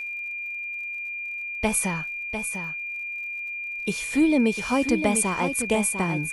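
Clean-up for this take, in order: de-click; band-stop 2.4 kHz, Q 30; inverse comb 699 ms -8.5 dB

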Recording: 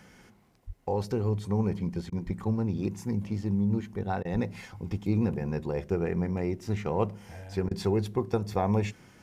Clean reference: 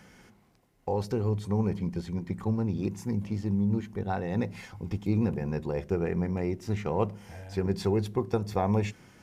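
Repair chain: de-plosive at 0.66/2.25/4.32 s; interpolate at 2.10/4.23/7.69 s, 20 ms

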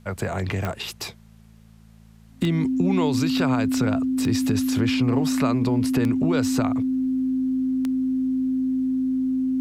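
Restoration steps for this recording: de-click; de-hum 55 Hz, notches 4; band-stop 260 Hz, Q 30; expander -41 dBFS, range -21 dB

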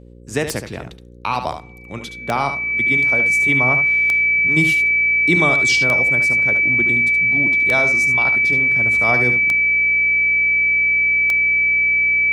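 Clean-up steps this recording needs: de-click; de-hum 59.9 Hz, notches 9; band-stop 2.3 kHz, Q 30; inverse comb 72 ms -8.5 dB

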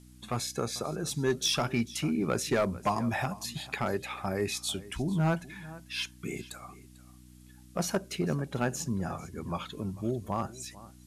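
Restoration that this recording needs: clip repair -20 dBFS; de-hum 61.9 Hz, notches 5; expander -45 dBFS, range -21 dB; inverse comb 445 ms -19 dB

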